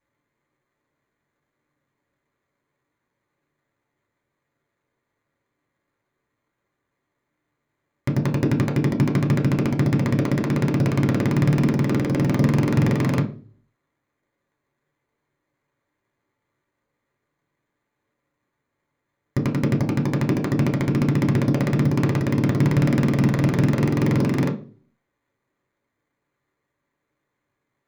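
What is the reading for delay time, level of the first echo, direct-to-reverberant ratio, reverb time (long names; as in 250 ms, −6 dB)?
no echo audible, no echo audible, 0.5 dB, 0.40 s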